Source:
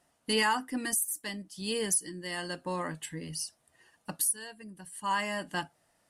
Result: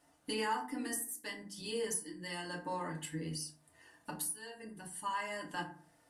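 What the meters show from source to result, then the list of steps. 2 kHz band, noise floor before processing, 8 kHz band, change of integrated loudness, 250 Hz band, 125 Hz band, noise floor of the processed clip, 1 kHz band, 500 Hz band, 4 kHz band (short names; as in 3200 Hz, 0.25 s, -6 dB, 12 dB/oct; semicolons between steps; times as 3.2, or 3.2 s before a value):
-8.0 dB, -72 dBFS, -9.0 dB, -7.5 dB, -5.5 dB, -3.5 dB, -69 dBFS, -5.5 dB, -5.0 dB, -8.5 dB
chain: notches 50/100/150/200 Hz; compressor 2:1, threshold -45 dBFS, peak gain reduction 11.5 dB; FDN reverb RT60 0.46 s, low-frequency decay 1.25×, high-frequency decay 0.5×, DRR -2 dB; gain -2 dB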